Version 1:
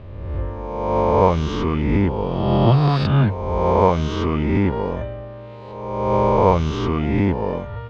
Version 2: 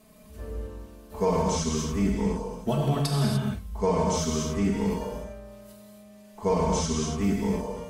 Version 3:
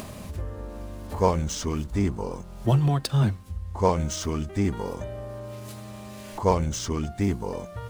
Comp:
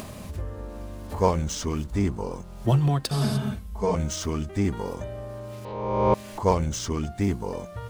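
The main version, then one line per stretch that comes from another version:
3
3.11–3.95 s: from 2
5.65–6.14 s: from 1

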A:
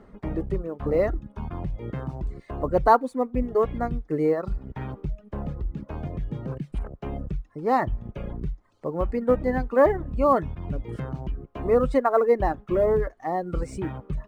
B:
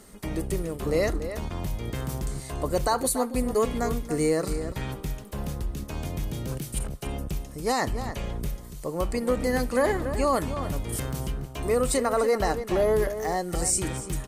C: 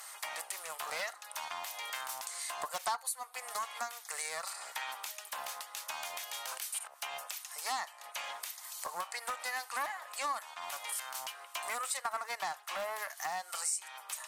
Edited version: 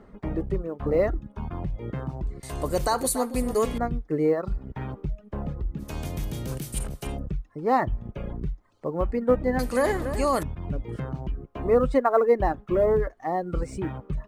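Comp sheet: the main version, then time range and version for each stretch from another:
A
2.43–3.78 s: from B
5.83–7.15 s: from B, crossfade 0.10 s
9.59–10.43 s: from B
not used: C

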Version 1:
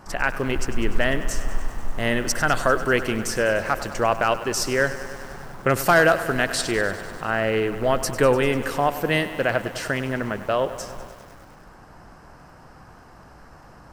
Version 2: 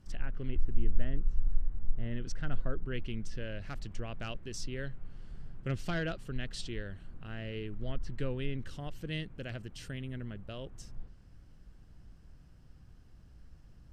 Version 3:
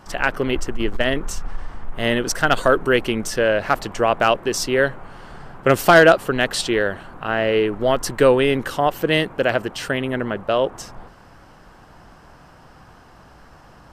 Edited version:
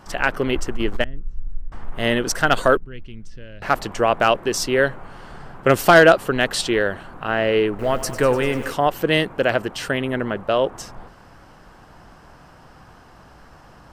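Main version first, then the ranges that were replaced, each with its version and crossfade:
3
1.04–1.72 s: from 2
2.77–3.62 s: from 2
7.79–8.73 s: from 1

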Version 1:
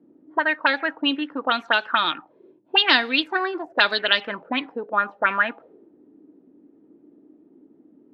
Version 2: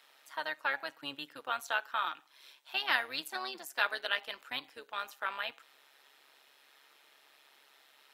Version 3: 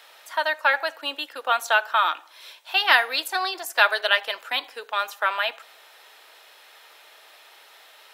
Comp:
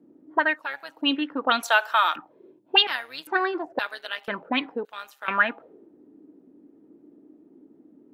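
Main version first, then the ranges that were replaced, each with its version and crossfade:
1
0.57–0.99 s: from 2, crossfade 0.24 s
1.63–2.16 s: from 3
2.87–3.27 s: from 2
3.79–4.28 s: from 2
4.85–5.28 s: from 2

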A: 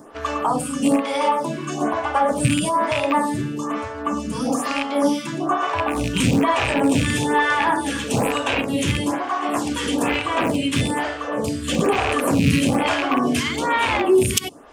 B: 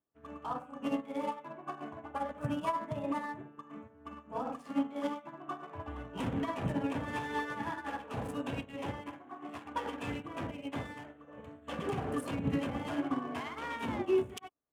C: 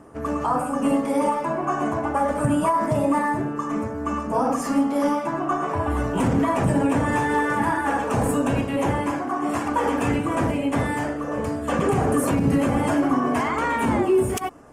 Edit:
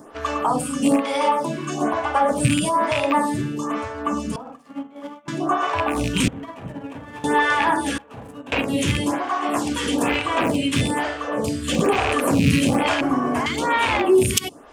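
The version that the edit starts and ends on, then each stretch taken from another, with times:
A
4.36–5.28 s: from B
6.28–7.24 s: from B
7.98–8.52 s: from B
13.01–13.46 s: from C

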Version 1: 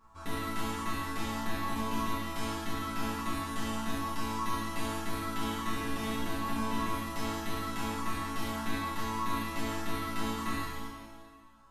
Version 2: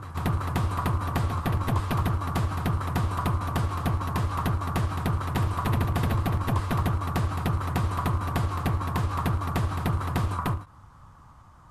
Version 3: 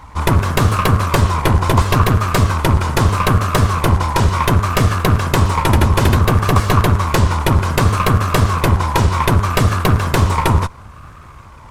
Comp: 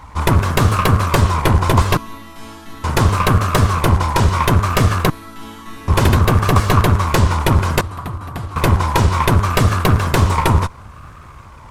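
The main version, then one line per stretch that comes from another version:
3
1.97–2.84 s: from 1
5.10–5.88 s: from 1
7.81–8.56 s: from 2

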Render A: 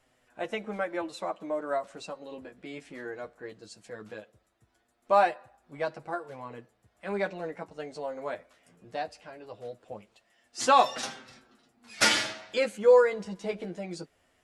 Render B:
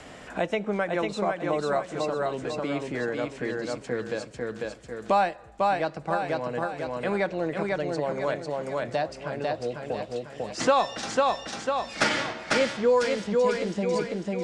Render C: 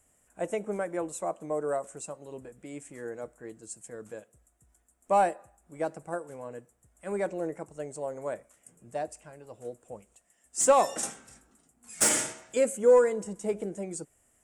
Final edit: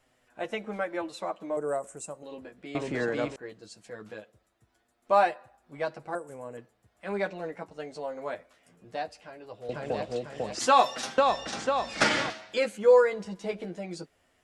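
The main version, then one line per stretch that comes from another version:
A
1.57–2.23 s: from C
2.75–3.36 s: from B
6.15–6.57 s: from C
9.69–10.59 s: from B
11.18–12.30 s: from B

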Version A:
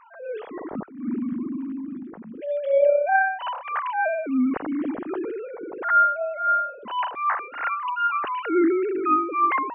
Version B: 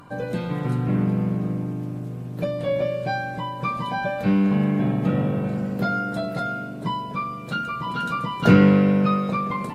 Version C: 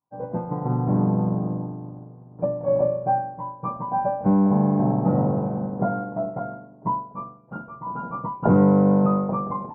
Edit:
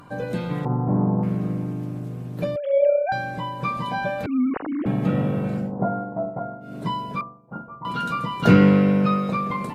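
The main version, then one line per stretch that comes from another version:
B
0.65–1.23 s: from C
2.56–3.12 s: from A
4.26–4.86 s: from A
5.65–6.68 s: from C, crossfade 0.16 s
7.21–7.85 s: from C

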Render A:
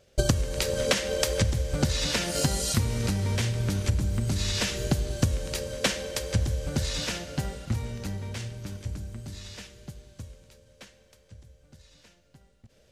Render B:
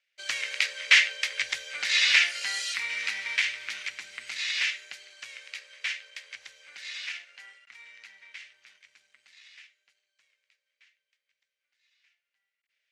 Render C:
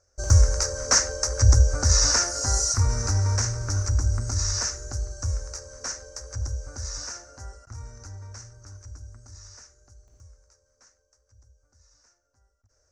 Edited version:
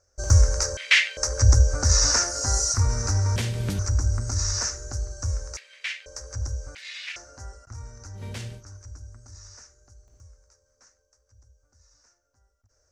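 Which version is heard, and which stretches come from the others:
C
0.77–1.17 s: from B
3.36–3.79 s: from A
5.57–6.06 s: from B
6.75–7.16 s: from B
8.19–8.59 s: from A, crossfade 0.10 s

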